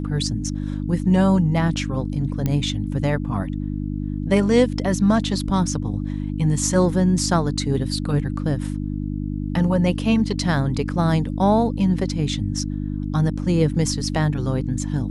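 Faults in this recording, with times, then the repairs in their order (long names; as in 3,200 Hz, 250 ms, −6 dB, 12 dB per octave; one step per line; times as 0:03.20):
mains hum 50 Hz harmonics 6 −26 dBFS
0:02.46: click −10 dBFS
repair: click removal
hum removal 50 Hz, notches 6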